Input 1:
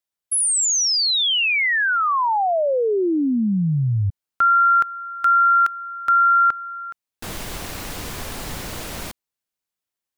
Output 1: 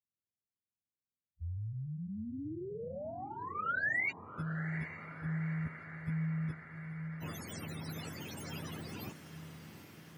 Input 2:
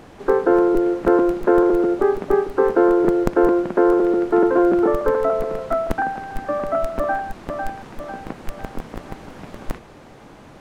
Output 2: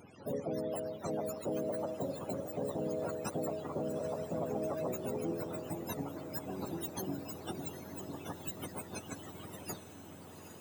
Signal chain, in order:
frequency axis turned over on the octave scale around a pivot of 470 Hz
harmonic and percussive parts rebalanced harmonic −17 dB
brickwall limiter −23 dBFS
parametric band 3,000 Hz +3.5 dB 0.73 octaves
feedback delay with all-pass diffusion 818 ms, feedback 70%, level −11 dB
level −5 dB

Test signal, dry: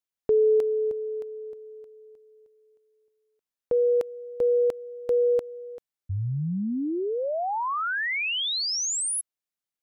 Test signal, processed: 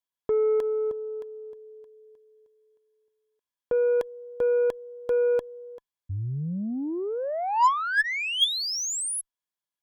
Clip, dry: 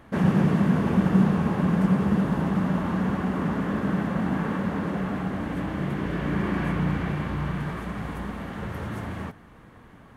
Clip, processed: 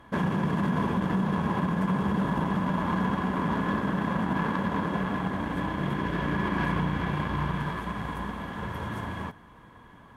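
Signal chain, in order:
notch filter 1,800 Hz, Q 11
brickwall limiter −19 dBFS
hollow resonant body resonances 1,000/1,700/3,300 Hz, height 12 dB, ringing for 30 ms
harmonic generator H 4 −35 dB, 7 −27 dB, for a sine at −12.5 dBFS

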